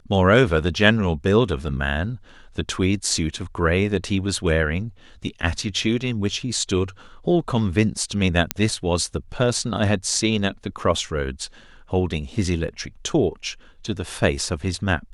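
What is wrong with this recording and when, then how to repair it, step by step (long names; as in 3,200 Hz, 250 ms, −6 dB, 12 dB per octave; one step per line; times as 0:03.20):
0:08.51: click −2 dBFS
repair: click removal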